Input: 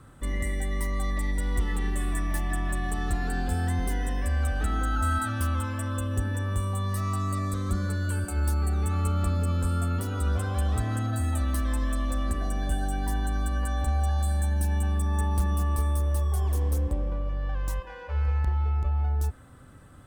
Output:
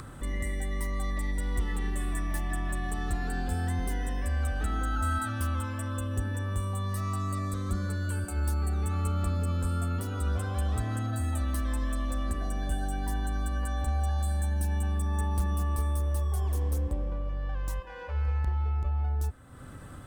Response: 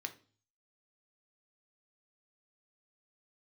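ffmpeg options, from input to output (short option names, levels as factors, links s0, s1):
-af "acompressor=mode=upward:threshold=0.0282:ratio=2.5,volume=0.708"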